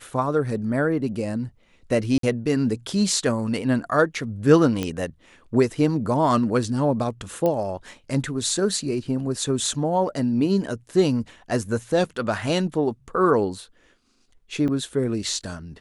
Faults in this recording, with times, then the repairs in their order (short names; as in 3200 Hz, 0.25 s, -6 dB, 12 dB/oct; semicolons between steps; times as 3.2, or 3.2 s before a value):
2.18–2.23 gap 53 ms
4.83 pop -12 dBFS
7.46 pop -12 dBFS
14.68–14.69 gap 6.3 ms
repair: de-click; interpolate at 2.18, 53 ms; interpolate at 14.68, 6.3 ms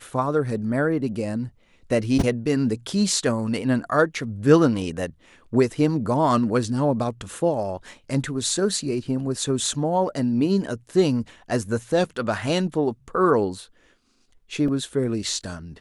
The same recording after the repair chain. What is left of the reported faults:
none